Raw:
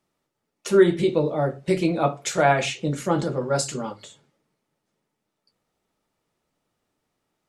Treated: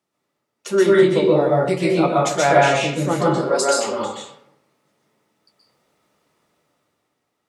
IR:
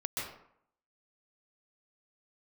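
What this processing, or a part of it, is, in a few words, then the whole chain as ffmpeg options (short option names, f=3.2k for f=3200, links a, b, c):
far laptop microphone: -filter_complex "[0:a]asettb=1/sr,asplit=3[a][b][c];[a]atrim=end=3.284[d];[b]atrim=start=3.28:end=3.87,asetpts=PTS-STARTPTS,afade=t=in:d=0.004:c=qsin,afade=t=out:st=0.586:d=0.004:c=qsin,highpass=f=310:w=0.5412,highpass=f=310:w=1.3066[e];[c]atrim=start=3.866[f];[d][e]acrossfade=d=0.004:c1=hsin:c2=qsin[g];[g][f]acrossfade=d=0.004:c1=qsin:c2=hsin[h];[1:a]atrim=start_sample=2205[i];[h][i]afir=irnorm=-1:irlink=0,highpass=f=190:p=1,dynaudnorm=f=160:g=11:m=9dB"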